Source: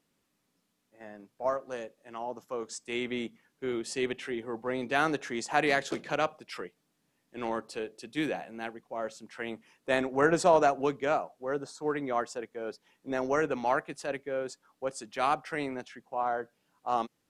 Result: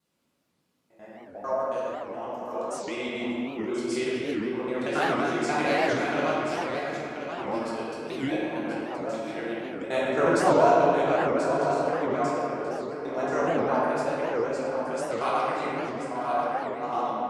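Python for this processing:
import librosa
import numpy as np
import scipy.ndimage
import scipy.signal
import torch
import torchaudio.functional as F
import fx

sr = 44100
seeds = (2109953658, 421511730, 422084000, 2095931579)

p1 = fx.local_reverse(x, sr, ms=90.0)
p2 = scipy.signal.sosfilt(scipy.signal.butter(2, 50.0, 'highpass', fs=sr, output='sos'), p1)
p3 = fx.notch(p2, sr, hz=1800.0, q=14.0)
p4 = p3 + fx.echo_single(p3, sr, ms=1033, db=-8.0, dry=0)
p5 = fx.room_shoebox(p4, sr, seeds[0], volume_m3=130.0, walls='hard', distance_m=0.96)
p6 = fx.record_warp(p5, sr, rpm=78.0, depth_cents=250.0)
y = p6 * 10.0 ** (-4.5 / 20.0)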